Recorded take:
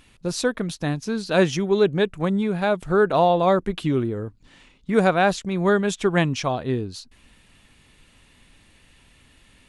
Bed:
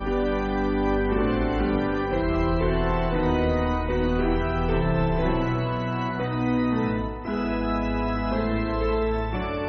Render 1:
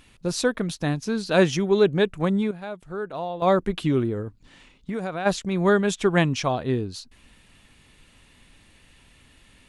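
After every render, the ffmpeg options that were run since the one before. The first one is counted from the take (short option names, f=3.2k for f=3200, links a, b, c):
-filter_complex "[0:a]asplit=3[a][b][c];[a]afade=t=out:st=4.21:d=0.02[d];[b]acompressor=threshold=-26dB:ratio=6:attack=3.2:release=140:knee=1:detection=peak,afade=t=in:st=4.21:d=0.02,afade=t=out:st=5.25:d=0.02[e];[c]afade=t=in:st=5.25:d=0.02[f];[d][e][f]amix=inputs=3:normalize=0,asplit=3[g][h][i];[g]atrim=end=2.51,asetpts=PTS-STARTPTS,afade=t=out:st=2.24:d=0.27:c=log:silence=0.223872[j];[h]atrim=start=2.51:end=3.42,asetpts=PTS-STARTPTS,volume=-13dB[k];[i]atrim=start=3.42,asetpts=PTS-STARTPTS,afade=t=in:d=0.27:c=log:silence=0.223872[l];[j][k][l]concat=n=3:v=0:a=1"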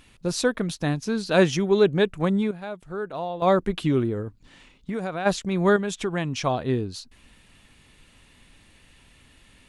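-filter_complex "[0:a]asettb=1/sr,asplit=3[a][b][c];[a]atrim=end=5.764[d];[b]atrim=start=5.76:end=6.43,asetpts=PTS-STARTPTS,afade=t=in:d=0.004:c=qsin,afade=t=out:st=0.666:d=0.004:c=qsin,acompressor=threshold=-27dB:ratio=2:attack=3.2:release=140:knee=1:detection=peak[e];[c]atrim=start=6.426[f];[d][e]acrossfade=d=0.004:c1=hsin:c2=qsin[g];[g][f]acrossfade=d=0.004:c1=qsin:c2=hsin"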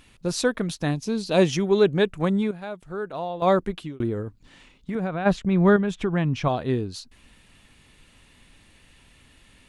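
-filter_complex "[0:a]asettb=1/sr,asplit=3[a][b][c];[a]atrim=end=0.914[d];[b]atrim=start=0.91:end=1.49,asetpts=PTS-STARTPTS,afade=t=in:d=0.004:c=qsin,afade=t=out:st=0.576:d=0.004:c=qsin,equalizer=f=1.5k:t=o:w=0.59:g=-9.5[e];[c]atrim=start=1.486[f];[d][e]acrossfade=d=0.004:c1=hsin:c2=qsin[g];[g][f]acrossfade=d=0.004:c1=qsin:c2=hsin,asettb=1/sr,asplit=3[h][i][j];[h]atrim=end=4.954[k];[i]atrim=start=4.95:end=6.48,asetpts=PTS-STARTPTS,afade=t=in:d=0.004:c=qsin,afade=t=out:st=1.526:d=0.004:c=qsin,bass=f=250:g=7,treble=f=4k:g=-12[l];[j]atrim=start=6.476[m];[k][l]acrossfade=d=0.004:c1=hsin:c2=qsin[n];[n][m]acrossfade=d=0.004:c1=qsin:c2=hsin,asplit=2[o][p];[o]atrim=end=4,asetpts=PTS-STARTPTS,afade=t=out:st=3.57:d=0.43[q];[p]atrim=start=4,asetpts=PTS-STARTPTS,afade=t=in:d=0.004:c=hsin[r];[q][r]concat=n=2:v=0:a=1"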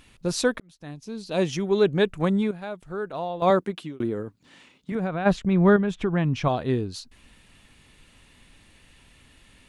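-filter_complex "[0:a]asettb=1/sr,asplit=3[a][b][c];[a]atrim=end=3.504[d];[b]atrim=start=3.5:end=4.92,asetpts=PTS-STARTPTS,afade=t=in:d=0.004:c=qsin,afade=t=out:st=1.416:d=0.004:c=qsin,highpass=150[e];[c]atrim=start=4.916[f];[d][e]acrossfade=d=0.004:c1=hsin:c2=qsin[g];[g][f]acrossfade=d=0.004:c1=qsin:c2=hsin,asettb=1/sr,asplit=3[h][i][j];[h]atrim=end=5.534[k];[i]atrim=start=5.53:end=6.24,asetpts=PTS-STARTPTS,afade=t=in:d=0.004:c=qsin,afade=t=out:st=0.706:d=0.004:c=qsin,highshelf=f=4.3k:g=-5[l];[j]atrim=start=6.236[m];[k][l]acrossfade=d=0.004:c1=hsin:c2=qsin[n];[n][m]acrossfade=d=0.004:c1=qsin:c2=hsin,asplit=2[o][p];[o]atrim=end=0.6,asetpts=PTS-STARTPTS,afade=t=out:st=0.596:d=0.004:c=hsin[q];[p]atrim=start=0.6,asetpts=PTS-STARTPTS,afade=t=in:d=1.48[r];[q][r]concat=n=2:v=0:a=1"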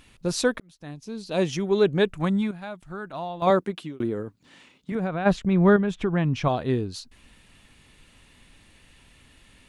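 -filter_complex "[0:a]asettb=1/sr,asplit=3[a][b][c];[a]atrim=end=2.174[d];[b]atrim=start=2.17:end=3.47,asetpts=PTS-STARTPTS,afade=t=in:d=0.004:c=qsin,afade=t=out:st=1.296:d=0.004:c=qsin,equalizer=f=460:t=o:w=0.41:g=-13.5[e];[c]atrim=start=3.466[f];[d][e]acrossfade=d=0.004:c1=hsin:c2=qsin[g];[g][f]acrossfade=d=0.004:c1=qsin:c2=hsin"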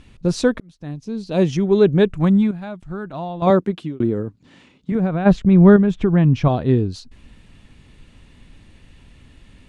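-af "lowpass=7.9k,lowshelf=f=450:g=11"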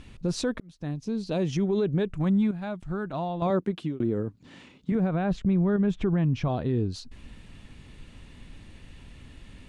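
-af "acompressor=threshold=-31dB:ratio=1.5,alimiter=limit=-17.5dB:level=0:latency=1:release=46"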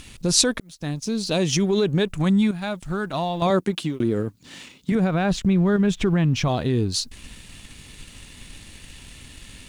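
-filter_complex "[0:a]crystalizer=i=6:c=0,asplit=2[a][b];[b]aeval=exprs='sgn(val(0))*max(abs(val(0))-0.00562,0)':c=same,volume=-3.5dB[c];[a][c]amix=inputs=2:normalize=0"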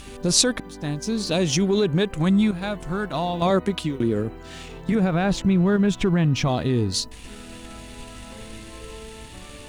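-filter_complex "[1:a]volume=-16.5dB[a];[0:a][a]amix=inputs=2:normalize=0"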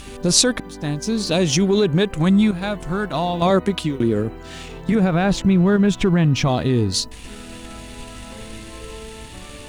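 -af "volume=3.5dB,alimiter=limit=-1dB:level=0:latency=1"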